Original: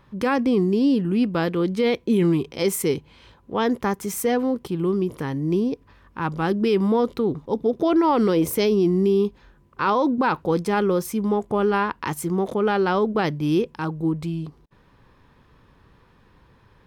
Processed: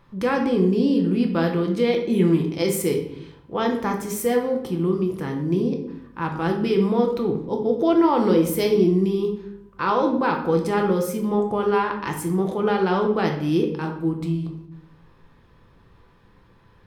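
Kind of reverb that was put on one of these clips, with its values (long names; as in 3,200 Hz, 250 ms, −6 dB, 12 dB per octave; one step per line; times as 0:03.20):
rectangular room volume 180 cubic metres, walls mixed, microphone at 0.76 metres
level −2.5 dB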